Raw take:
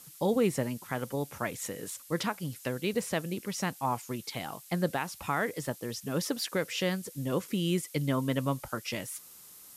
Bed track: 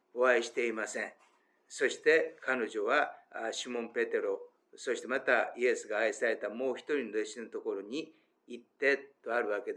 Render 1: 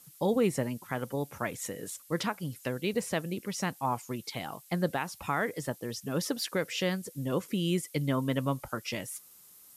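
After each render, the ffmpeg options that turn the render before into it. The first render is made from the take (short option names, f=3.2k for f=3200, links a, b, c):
-af "afftdn=nr=6:nf=-52"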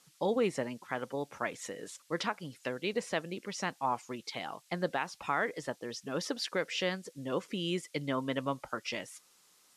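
-af "lowpass=5.9k,equalizer=f=78:t=o:w=2.5:g=-15"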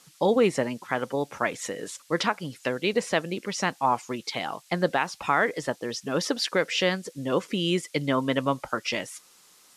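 -af "volume=8.5dB"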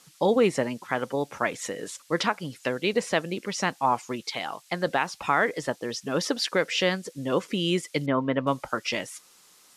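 -filter_complex "[0:a]asettb=1/sr,asplit=3[a][b][c];[a]atrim=end=4.224[d];[b]atrim=start=4.22:end=4.87,asetpts=PTS-STARTPTS,afade=t=in:d=0.004:c=qsin,afade=t=out:st=0.646:d=0.004:c=qsin,lowshelf=f=440:g=-6[e];[c]atrim=start=4.866[f];[d][e]acrossfade=d=0.004:c1=hsin:c2=qsin[g];[g][f]acrossfade=d=0.004:c1=qsin:c2=hsin,asettb=1/sr,asplit=3[h][i][j];[h]atrim=end=8.064[k];[i]atrim=start=8.06:end=8.47,asetpts=PTS-STARTPTS,afade=t=in:d=0.004:c=qsin,afade=t=out:st=0.406:d=0.004:c=qsin,lowpass=2k[l];[j]atrim=start=8.466[m];[k][l]acrossfade=d=0.004:c1=hsin:c2=qsin[n];[n][m]acrossfade=d=0.004:c1=qsin:c2=hsin"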